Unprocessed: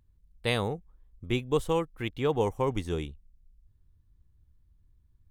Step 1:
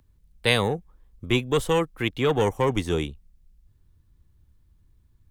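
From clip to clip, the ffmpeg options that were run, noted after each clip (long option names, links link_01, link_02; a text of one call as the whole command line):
ffmpeg -i in.wav -filter_complex "[0:a]lowshelf=frequency=120:gain=-7,acrossover=split=200|1200|2600[link_01][link_02][link_03][link_04];[link_02]asoftclip=type=tanh:threshold=-27.5dB[link_05];[link_01][link_05][link_03][link_04]amix=inputs=4:normalize=0,volume=9dB" out.wav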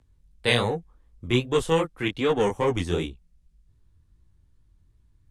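ffmpeg -i in.wav -af "lowpass=frequency=11000:width=0.5412,lowpass=frequency=11000:width=1.3066,flanger=delay=17:depth=7.7:speed=2.6,volume=2dB" out.wav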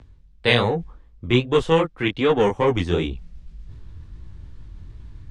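ffmpeg -i in.wav -af "lowpass=4600,areverse,acompressor=mode=upward:threshold=-27dB:ratio=2.5,areverse,volume=4.5dB" out.wav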